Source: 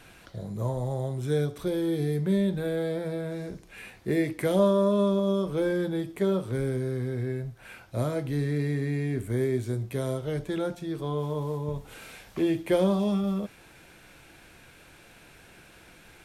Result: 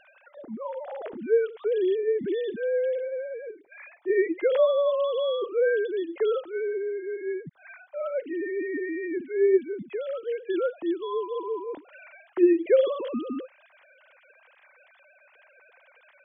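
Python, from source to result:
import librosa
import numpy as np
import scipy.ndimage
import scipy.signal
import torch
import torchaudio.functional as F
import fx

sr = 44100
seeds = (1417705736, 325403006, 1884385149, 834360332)

y = fx.sine_speech(x, sr)
y = y * librosa.db_to_amplitude(1.0)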